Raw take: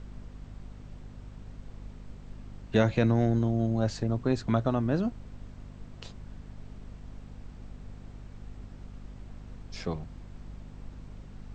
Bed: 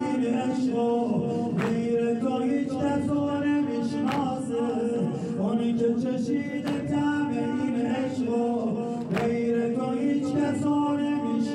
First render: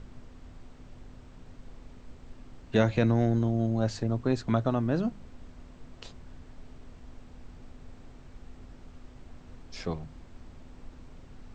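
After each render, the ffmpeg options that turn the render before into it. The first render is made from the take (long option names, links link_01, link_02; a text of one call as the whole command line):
ffmpeg -i in.wav -af "bandreject=frequency=50:width_type=h:width=4,bandreject=frequency=100:width_type=h:width=4,bandreject=frequency=150:width_type=h:width=4,bandreject=frequency=200:width_type=h:width=4" out.wav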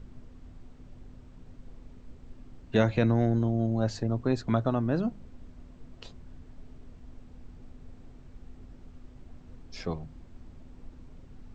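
ffmpeg -i in.wav -af "afftdn=noise_reduction=6:noise_floor=-51" out.wav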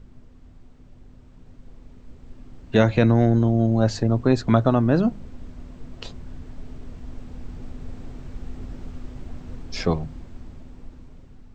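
ffmpeg -i in.wav -af "dynaudnorm=framelen=980:gausssize=5:maxgain=14dB" out.wav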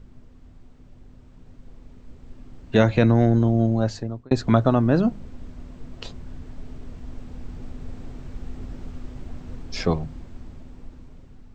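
ffmpeg -i in.wav -filter_complex "[0:a]asplit=2[link_01][link_02];[link_01]atrim=end=4.31,asetpts=PTS-STARTPTS,afade=type=out:start_time=3.63:duration=0.68[link_03];[link_02]atrim=start=4.31,asetpts=PTS-STARTPTS,afade=type=in:duration=0.004:curve=hsin[link_04];[link_03][link_04]concat=n=2:v=0:a=1" out.wav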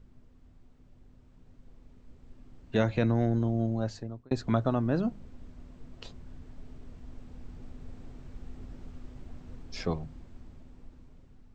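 ffmpeg -i in.wav -af "volume=-9dB" out.wav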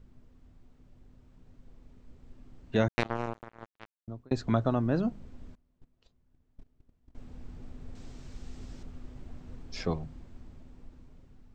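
ffmpeg -i in.wav -filter_complex "[0:a]asettb=1/sr,asplit=3[link_01][link_02][link_03];[link_01]atrim=end=2.884[link_04];[link_02]atrim=start=2.88:end=4.08,asetpts=PTS-STARTPTS,afade=type=in:duration=0.004:curve=qsin,afade=type=out:start_time=1.196:duration=0.004:curve=qsin,acrusher=bits=2:mix=0:aa=0.5[link_05];[link_03]atrim=start=4.076[link_06];[link_04][link_05]acrossfade=duration=0.004:curve1=hsin:curve2=qsin[link_07];[link_07][link_06]acrossfade=duration=0.004:curve1=qsin:curve2=hsin,asettb=1/sr,asplit=3[link_08][link_09][link_10];[link_08]atrim=end=5.554[link_11];[link_09]atrim=start=5.55:end=7.15,asetpts=PTS-STARTPTS,afade=type=in:duration=0.004:curve=qsin,afade=type=out:start_time=1.596:duration=0.004:curve=qsin,agate=range=-24dB:threshold=-39dB:ratio=16:release=100:detection=peak[link_12];[link_10]atrim=start=7.146[link_13];[link_11][link_12]acrossfade=duration=0.004:curve1=hsin:curve2=qsin[link_14];[link_14][link_13]acrossfade=duration=0.004:curve1=qsin:curve2=hsin,asettb=1/sr,asplit=3[link_15][link_16][link_17];[link_15]atrim=end=7.954[link_18];[link_16]atrim=start=7.95:end=8.83,asetpts=PTS-STARTPTS,afade=type=in:duration=0.004:curve=qsin,afade=type=out:start_time=0.876:duration=0.004:curve=qsin,equalizer=frequency=6000:width=0.53:gain=11.5[link_19];[link_17]atrim=start=8.826[link_20];[link_18][link_19]acrossfade=duration=0.004:curve1=hsin:curve2=qsin[link_21];[link_21][link_20]acrossfade=duration=0.004:curve1=qsin:curve2=hsin" out.wav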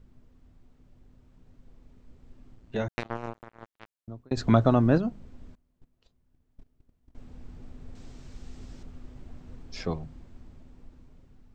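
ffmpeg -i in.wav -filter_complex "[0:a]asplit=3[link_01][link_02][link_03];[link_01]afade=type=out:start_time=2.54:duration=0.02[link_04];[link_02]tremolo=f=110:d=0.571,afade=type=in:start_time=2.54:duration=0.02,afade=type=out:start_time=3.53:duration=0.02[link_05];[link_03]afade=type=in:start_time=3.53:duration=0.02[link_06];[link_04][link_05][link_06]amix=inputs=3:normalize=0,asettb=1/sr,asplit=3[link_07][link_08][link_09];[link_07]atrim=end=4.374[link_10];[link_08]atrim=start=4.37:end=4.98,asetpts=PTS-STARTPTS,afade=type=in:duration=0.004:curve=qsin,afade=type=out:start_time=0.606:duration=0.004:curve=qsin,acontrast=80[link_11];[link_09]atrim=start=4.976[link_12];[link_10][link_11]acrossfade=duration=0.004:curve1=hsin:curve2=qsin[link_13];[link_13][link_12]acrossfade=duration=0.004:curve1=qsin:curve2=hsin" out.wav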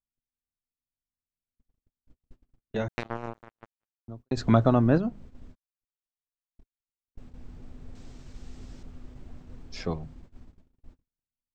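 ffmpeg -i in.wav -af "agate=range=-45dB:threshold=-45dB:ratio=16:detection=peak,adynamicequalizer=threshold=0.00562:dfrequency=3000:dqfactor=0.7:tfrequency=3000:tqfactor=0.7:attack=5:release=100:ratio=0.375:range=2.5:mode=cutabove:tftype=highshelf" out.wav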